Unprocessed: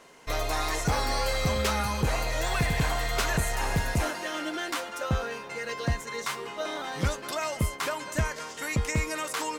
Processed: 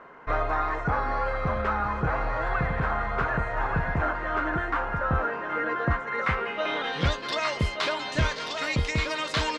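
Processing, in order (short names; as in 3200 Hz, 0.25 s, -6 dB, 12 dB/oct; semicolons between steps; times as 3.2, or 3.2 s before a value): low-pass sweep 1400 Hz -> 4000 Hz, 5.85–7.21; echo 1.181 s -5.5 dB; vocal rider within 4 dB 0.5 s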